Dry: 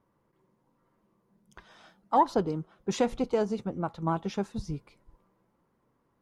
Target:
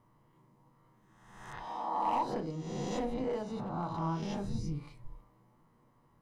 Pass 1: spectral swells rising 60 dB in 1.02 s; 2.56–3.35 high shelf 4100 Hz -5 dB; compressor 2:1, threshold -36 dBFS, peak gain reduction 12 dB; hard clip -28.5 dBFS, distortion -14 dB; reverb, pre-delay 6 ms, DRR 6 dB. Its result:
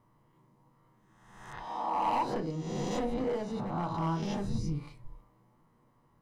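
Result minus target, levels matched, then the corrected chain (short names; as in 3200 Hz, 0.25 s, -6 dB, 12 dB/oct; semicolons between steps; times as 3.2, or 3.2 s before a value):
compressor: peak gain reduction -3 dB
spectral swells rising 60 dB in 1.02 s; 2.56–3.35 high shelf 4100 Hz -5 dB; compressor 2:1, threshold -42.5 dBFS, peak gain reduction 15.5 dB; hard clip -28.5 dBFS, distortion -20 dB; reverb, pre-delay 6 ms, DRR 6 dB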